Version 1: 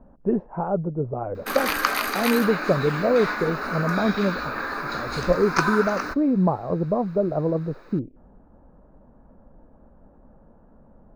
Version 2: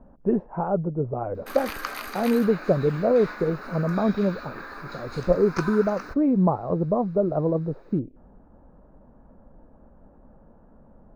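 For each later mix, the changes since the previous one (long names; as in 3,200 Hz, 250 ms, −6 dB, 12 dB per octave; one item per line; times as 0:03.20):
background −10.0 dB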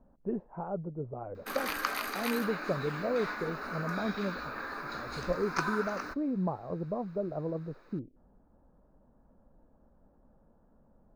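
speech −11.5 dB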